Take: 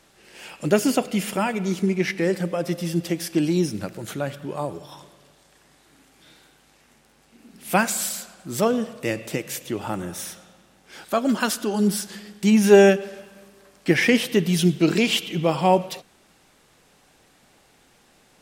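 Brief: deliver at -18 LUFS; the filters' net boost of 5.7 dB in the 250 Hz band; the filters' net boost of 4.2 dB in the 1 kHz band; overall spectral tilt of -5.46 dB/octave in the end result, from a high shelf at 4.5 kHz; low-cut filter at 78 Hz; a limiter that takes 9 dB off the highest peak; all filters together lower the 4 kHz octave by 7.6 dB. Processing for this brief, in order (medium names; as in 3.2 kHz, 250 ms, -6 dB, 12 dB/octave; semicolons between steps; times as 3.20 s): high-pass 78 Hz; peaking EQ 250 Hz +7.5 dB; peaking EQ 1 kHz +6 dB; peaking EQ 4 kHz -7 dB; treble shelf 4.5 kHz -9 dB; trim +2.5 dB; peak limiter -5.5 dBFS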